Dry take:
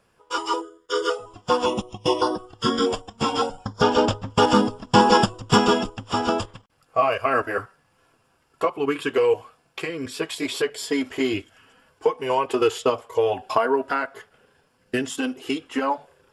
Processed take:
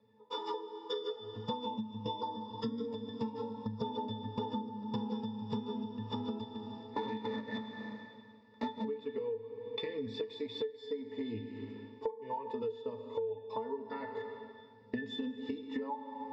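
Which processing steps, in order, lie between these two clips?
0:06.41–0:08.85: sub-harmonics by changed cycles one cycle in 2, inverted
loudspeaker in its box 200–6,300 Hz, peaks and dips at 490 Hz −5 dB, 750 Hz −3 dB, 1,100 Hz −5 dB, 1,700 Hz −9 dB, 4,900 Hz +6 dB
resonances in every octave A, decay 0.22 s
automatic gain control gain up to 7 dB
four-comb reverb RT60 1.6 s, combs from 33 ms, DRR 10.5 dB
downward compressor 12 to 1, threshold −49 dBFS, peak gain reduction 30 dB
level +14 dB

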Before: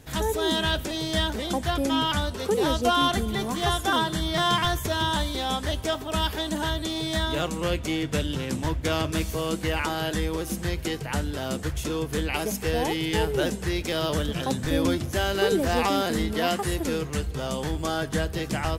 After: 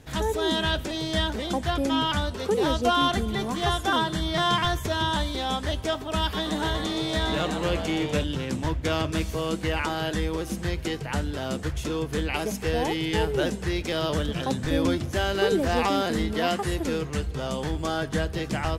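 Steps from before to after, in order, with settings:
high-shelf EQ 10,000 Hz −11.5 dB
0:06.21–0:08.24: echo with shifted repeats 122 ms, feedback 54%, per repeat +130 Hz, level −7.5 dB

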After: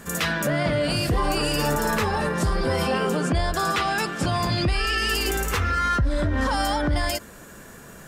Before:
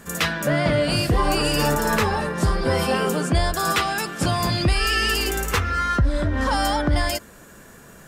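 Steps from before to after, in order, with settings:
0:02.82–0:04.98: high-shelf EQ 9,200 Hz −11.5 dB
brickwall limiter −17 dBFS, peak gain reduction 6.5 dB
level +2 dB

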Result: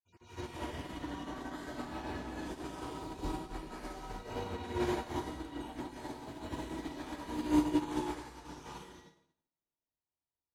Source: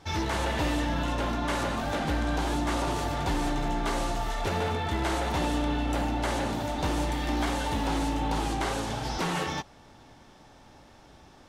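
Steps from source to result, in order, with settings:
time-frequency cells dropped at random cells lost 32%
dynamic equaliser 250 Hz, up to +7 dB, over −45 dBFS, Q 1.3
tuned comb filter 330 Hz, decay 0.84 s, mix 40%
convolution reverb RT60 1.6 s, pre-delay 163 ms, DRR −8.5 dB
wrong playback speed 44.1 kHz file played as 48 kHz
expander for the loud parts 2.5 to 1, over −46 dBFS
level −6.5 dB

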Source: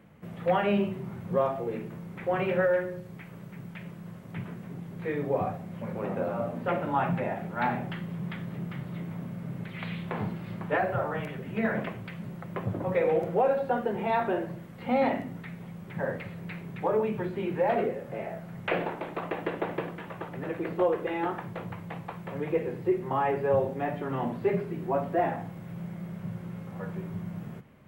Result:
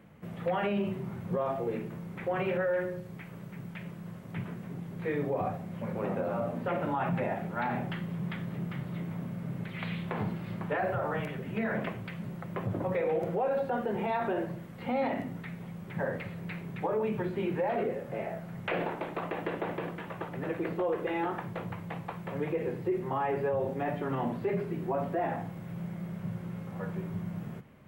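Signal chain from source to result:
brickwall limiter −22.5 dBFS, peak gain reduction 8 dB

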